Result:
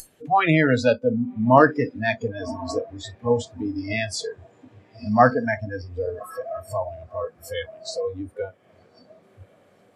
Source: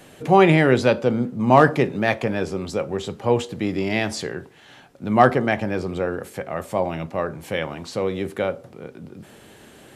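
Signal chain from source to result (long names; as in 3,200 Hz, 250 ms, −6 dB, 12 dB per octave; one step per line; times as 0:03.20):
feedback delay with all-pass diffusion 1,098 ms, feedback 65%, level −11 dB
upward compression, threshold −19 dBFS
noise reduction from a noise print of the clip's start 29 dB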